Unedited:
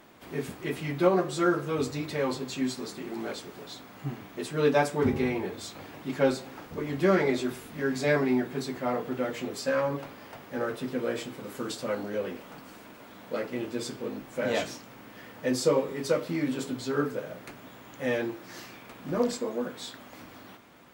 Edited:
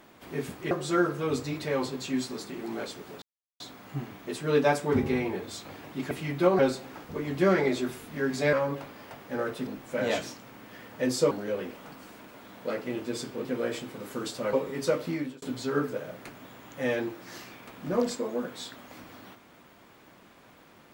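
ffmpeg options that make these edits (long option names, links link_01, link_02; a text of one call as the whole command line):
ffmpeg -i in.wav -filter_complex "[0:a]asplit=11[link_01][link_02][link_03][link_04][link_05][link_06][link_07][link_08][link_09][link_10][link_11];[link_01]atrim=end=0.712[link_12];[link_02]atrim=start=1.188:end=3.7,asetpts=PTS-STARTPTS,afade=type=out:start_time=2.508:duration=0.004:curve=hsin,apad=pad_dur=0.38[link_13];[link_03]atrim=start=3.7:end=6.212,asetpts=PTS-STARTPTS,afade=type=in:duration=0.004:curve=hsin[link_14];[link_04]atrim=start=0.708:end=1.192[link_15];[link_05]atrim=start=6.208:end=8.152[link_16];[link_06]atrim=start=9.748:end=10.892[link_17];[link_07]atrim=start=14.108:end=15.752[link_18];[link_08]atrim=start=11.968:end=14.112[link_19];[link_09]atrim=start=10.888:end=11.972[link_20];[link_10]atrim=start=15.748:end=16.64,asetpts=PTS-STARTPTS,afade=type=out:start_time=0.572:duration=0.32[link_21];[link_11]atrim=start=16.64,asetpts=PTS-STARTPTS,afade=type=in:duration=0.004:curve=hsin[link_22];[link_13][link_14]concat=n=2:v=0:a=1[link_23];[link_12][link_23]acrossfade=duration=0.004:curve1=hsin:curve2=hsin[link_24];[link_24][link_15]acrossfade=duration=0.004:curve1=hsin:curve2=hsin[link_25];[link_25][link_16]acrossfade=duration=0.004:curve1=hsin:curve2=hsin[link_26];[link_26][link_17]acrossfade=duration=0.004:curve1=hsin:curve2=hsin[link_27];[link_27][link_18]acrossfade=duration=0.004:curve1=hsin:curve2=hsin[link_28];[link_28][link_19]acrossfade=duration=0.004:curve1=hsin:curve2=hsin[link_29];[link_29][link_20]acrossfade=duration=0.004:curve1=hsin:curve2=hsin[link_30];[link_21][link_22]concat=n=2:v=0:a=1[link_31];[link_30][link_31]acrossfade=duration=0.004:curve1=hsin:curve2=hsin" out.wav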